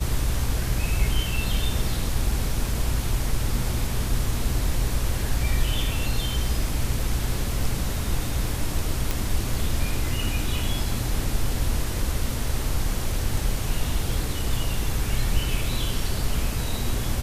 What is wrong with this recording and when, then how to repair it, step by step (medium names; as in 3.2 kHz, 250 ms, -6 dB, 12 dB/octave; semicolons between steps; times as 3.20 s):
9.11 s: pop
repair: de-click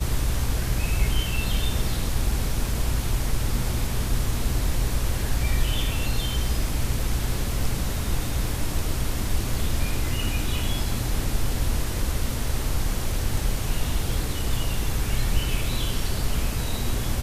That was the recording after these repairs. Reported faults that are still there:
nothing left